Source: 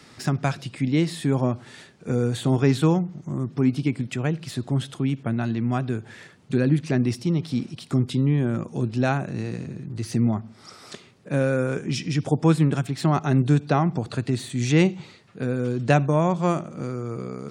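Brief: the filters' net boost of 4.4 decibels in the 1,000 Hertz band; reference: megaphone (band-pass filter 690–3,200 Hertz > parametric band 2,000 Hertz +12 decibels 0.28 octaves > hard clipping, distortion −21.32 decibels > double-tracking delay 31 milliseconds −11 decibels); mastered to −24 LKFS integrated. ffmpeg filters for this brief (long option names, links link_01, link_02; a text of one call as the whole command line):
ffmpeg -i in.wav -filter_complex "[0:a]highpass=690,lowpass=3200,equalizer=frequency=1000:width_type=o:gain=7.5,equalizer=frequency=2000:width_type=o:width=0.28:gain=12,asoftclip=type=hard:threshold=-11.5dB,asplit=2[link_01][link_02];[link_02]adelay=31,volume=-11dB[link_03];[link_01][link_03]amix=inputs=2:normalize=0,volume=5dB" out.wav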